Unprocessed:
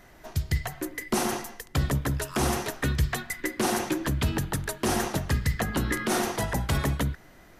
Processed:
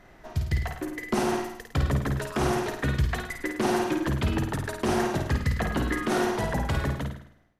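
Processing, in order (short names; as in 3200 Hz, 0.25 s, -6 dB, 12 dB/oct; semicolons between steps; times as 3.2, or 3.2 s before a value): ending faded out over 0.98 s; LPF 2900 Hz 6 dB/oct; on a send: flutter echo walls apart 9 m, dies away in 0.59 s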